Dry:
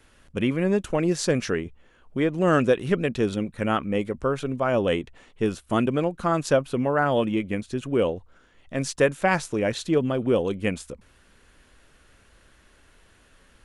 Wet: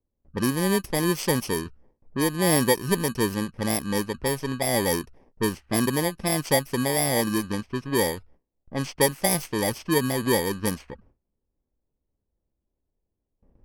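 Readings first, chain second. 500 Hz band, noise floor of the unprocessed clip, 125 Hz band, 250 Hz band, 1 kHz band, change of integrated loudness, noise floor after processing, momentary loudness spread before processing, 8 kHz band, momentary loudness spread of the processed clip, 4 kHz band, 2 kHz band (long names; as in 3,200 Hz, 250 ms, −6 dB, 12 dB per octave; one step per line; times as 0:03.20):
−3.0 dB, −58 dBFS, 0.0 dB, −1.0 dB, −1.0 dB, 0.0 dB, −81 dBFS, 8 LU, +10.5 dB, 8 LU, +6.0 dB, 0.0 dB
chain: samples in bit-reversed order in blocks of 32 samples
low-pass that shuts in the quiet parts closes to 650 Hz, open at −20 dBFS
noise gate with hold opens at −48 dBFS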